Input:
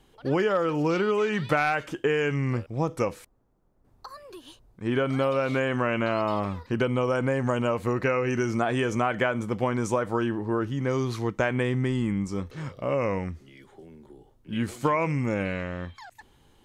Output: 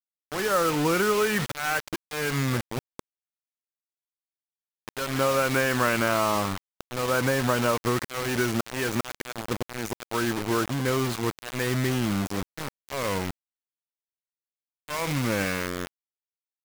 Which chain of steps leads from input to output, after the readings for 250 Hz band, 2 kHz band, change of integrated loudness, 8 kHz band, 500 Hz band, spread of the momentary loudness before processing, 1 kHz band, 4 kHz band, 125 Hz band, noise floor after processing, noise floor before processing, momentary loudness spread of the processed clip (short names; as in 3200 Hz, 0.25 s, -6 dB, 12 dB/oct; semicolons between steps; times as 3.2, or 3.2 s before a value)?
-1.5 dB, +2.0 dB, 0.0 dB, +11.5 dB, -2.0 dB, 9 LU, +0.5 dB, +6.5 dB, -2.0 dB, under -85 dBFS, -62 dBFS, 12 LU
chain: dynamic EQ 1500 Hz, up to +6 dB, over -42 dBFS, Q 1.3; auto swell 0.354 s; bit-crush 5-bit